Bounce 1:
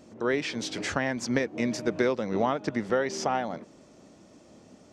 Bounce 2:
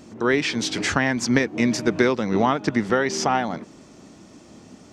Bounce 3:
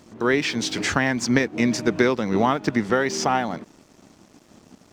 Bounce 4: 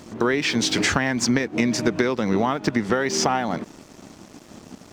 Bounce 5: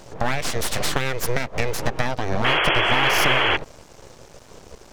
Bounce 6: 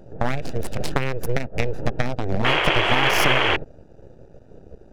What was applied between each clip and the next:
bell 560 Hz -7 dB 0.63 oct; gain +8.5 dB
crossover distortion -49.5 dBFS
compressor, threshold -25 dBFS, peak gain reduction 11.5 dB; gain +7.5 dB
full-wave rectifier; painted sound noise, 2.44–3.57, 310–3400 Hz -20 dBFS
Wiener smoothing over 41 samples; gain +2 dB

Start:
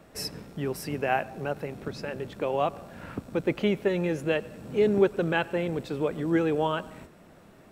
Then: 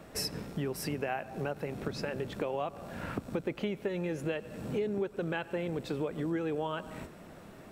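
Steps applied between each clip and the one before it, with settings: compressor 6:1, threshold -34 dBFS, peak gain reduction 17 dB; gain +3 dB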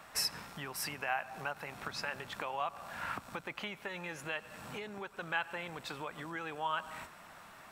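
resonant low shelf 650 Hz -13.5 dB, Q 1.5; gain +2 dB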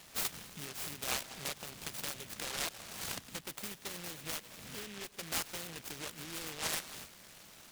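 noise-modulated delay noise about 2400 Hz, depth 0.34 ms; gain -1.5 dB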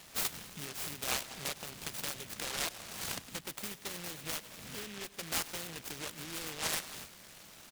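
echo 0.101 s -21 dB; gain +1.5 dB

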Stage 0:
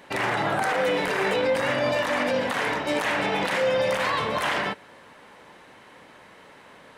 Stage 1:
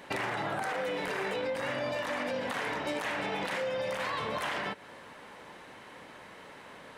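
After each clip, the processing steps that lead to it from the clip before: compressor 6:1, threshold -31 dBFS, peak gain reduction 11.5 dB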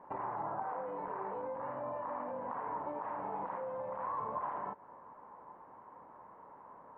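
ladder low-pass 1100 Hz, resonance 65%; gain +1 dB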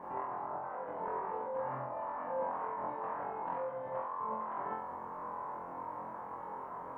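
negative-ratio compressor -45 dBFS, ratio -1; flutter echo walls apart 3.9 m, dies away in 0.63 s; gain +2.5 dB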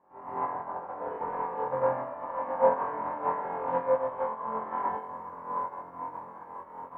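non-linear reverb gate 0.29 s rising, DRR -7.5 dB; upward expander 2.5:1, over -42 dBFS; gain +7 dB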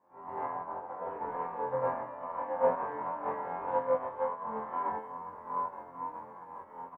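endless flanger 10.9 ms -2.4 Hz

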